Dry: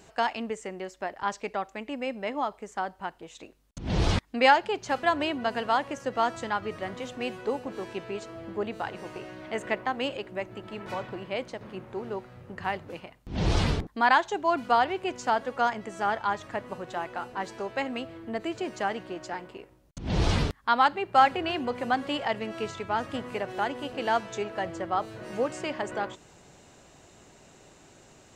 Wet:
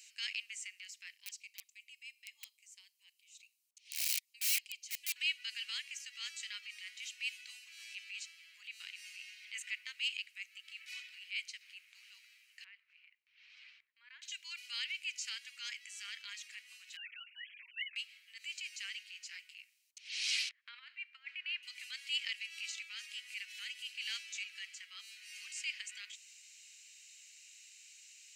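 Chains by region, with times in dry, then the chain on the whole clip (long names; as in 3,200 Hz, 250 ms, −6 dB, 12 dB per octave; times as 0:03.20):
0:01.16–0:05.16: phaser with its sweep stopped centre 590 Hz, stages 4 + wrap-around overflow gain 22.5 dB + parametric band 3,700 Hz −7.5 dB 3 octaves
0:12.64–0:14.22: downward compressor 2 to 1, threshold −36 dBFS + low-pass filter 1,300 Hz
0:16.96–0:17.96: three sine waves on the formant tracks + high-pass filter 730 Hz + comb filter 7.5 ms, depth 93%
0:20.49–0:21.63: low-pass filter 1,600 Hz + compressor whose output falls as the input rises −25 dBFS, ratio −0.5
whole clip: elliptic high-pass filter 2,300 Hz, stop band 70 dB; notch filter 3,500 Hz, Q 9.9; transient designer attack −7 dB, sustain −1 dB; level +4 dB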